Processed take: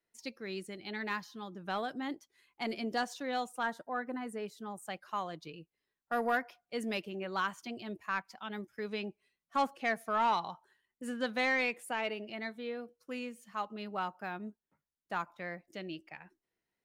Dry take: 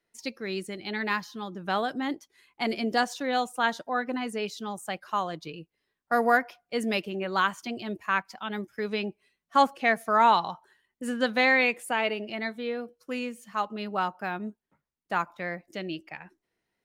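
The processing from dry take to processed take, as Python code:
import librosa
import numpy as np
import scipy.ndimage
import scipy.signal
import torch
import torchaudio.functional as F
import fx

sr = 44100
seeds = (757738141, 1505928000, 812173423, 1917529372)

y = 10.0 ** (-13.5 / 20.0) * np.tanh(x / 10.0 ** (-13.5 / 20.0))
y = fx.band_shelf(y, sr, hz=4000.0, db=-8.5, octaves=1.7, at=(3.63, 4.82))
y = y * librosa.db_to_amplitude(-7.5)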